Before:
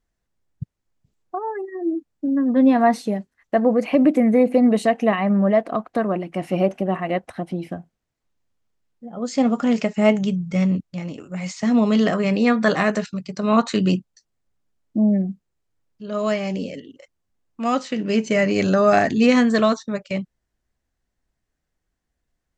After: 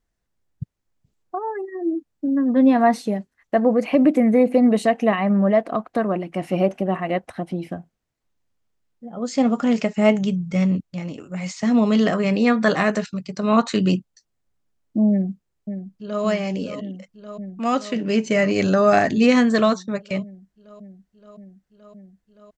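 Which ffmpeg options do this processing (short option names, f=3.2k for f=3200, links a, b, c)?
-filter_complex "[0:a]asplit=2[a][b];[b]afade=t=in:st=15.1:d=0.01,afade=t=out:st=16.23:d=0.01,aecho=0:1:570|1140|1710|2280|2850|3420|3990|4560|5130|5700|6270|6840:0.334965|0.284721|0.242013|0.205711|0.174854|0.148626|0.126332|0.107382|0.0912749|0.0775837|0.0659461|0.0560542[c];[a][c]amix=inputs=2:normalize=0"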